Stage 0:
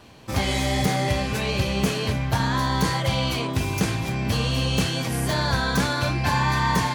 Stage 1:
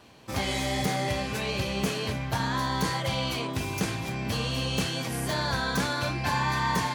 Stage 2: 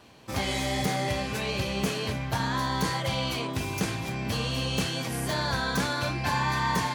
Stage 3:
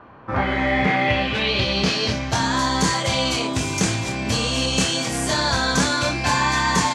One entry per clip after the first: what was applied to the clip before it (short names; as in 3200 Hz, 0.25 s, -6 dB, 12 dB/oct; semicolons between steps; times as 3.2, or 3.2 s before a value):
low shelf 120 Hz -7 dB; gain -4 dB
nothing audible
low-pass sweep 1300 Hz -> 7500 Hz, 0.23–2.49; doubler 27 ms -6.5 dB; gain +6.5 dB